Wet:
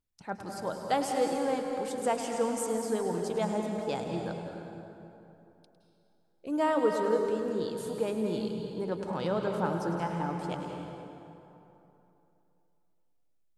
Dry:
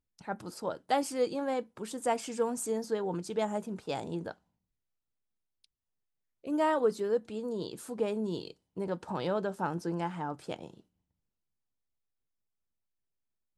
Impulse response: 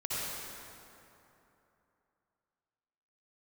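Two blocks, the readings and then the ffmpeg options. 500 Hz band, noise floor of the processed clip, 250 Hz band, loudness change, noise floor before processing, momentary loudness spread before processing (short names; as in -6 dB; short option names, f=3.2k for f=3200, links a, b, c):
+2.5 dB, -69 dBFS, +3.0 dB, +2.0 dB, -85 dBFS, 12 LU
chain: -filter_complex "[0:a]asplit=2[a][b];[b]lowshelf=f=79:g=11.5[c];[1:a]atrim=start_sample=2205,adelay=104[d];[c][d]afir=irnorm=-1:irlink=0,volume=-8.5dB[e];[a][e]amix=inputs=2:normalize=0"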